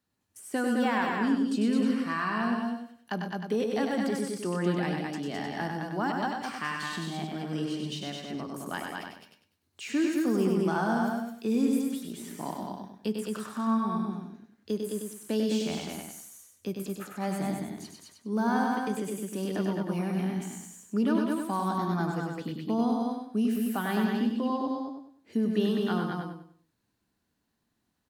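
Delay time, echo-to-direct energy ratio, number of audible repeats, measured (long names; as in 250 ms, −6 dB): 98 ms, 0.0 dB, 5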